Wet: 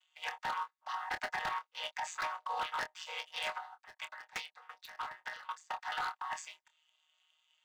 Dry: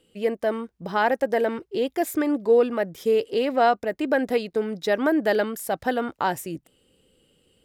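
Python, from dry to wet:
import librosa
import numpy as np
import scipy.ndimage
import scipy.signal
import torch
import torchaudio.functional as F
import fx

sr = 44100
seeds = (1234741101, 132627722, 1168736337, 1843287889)

y = fx.chord_vocoder(x, sr, chord='major triad', root=47)
y = scipy.signal.sosfilt(scipy.signal.butter(8, 890.0, 'highpass', fs=sr, output='sos'), y)
y = fx.over_compress(y, sr, threshold_db=-40.0, ratio=-1.0)
y = fx.leveller(y, sr, passes=1)
y = 10.0 ** (-31.0 / 20.0) * (np.abs((y / 10.0 ** (-31.0 / 20.0) + 3.0) % 4.0 - 2.0) - 1.0)
y = fx.doubler(y, sr, ms=26.0, db=-10)
y = fx.tremolo_decay(y, sr, direction='decaying', hz=fx.line((3.57, 2.0), (5.73, 4.9)), depth_db=21, at=(3.57, 5.73), fade=0.02)
y = F.gain(torch.from_numpy(y), 1.0).numpy()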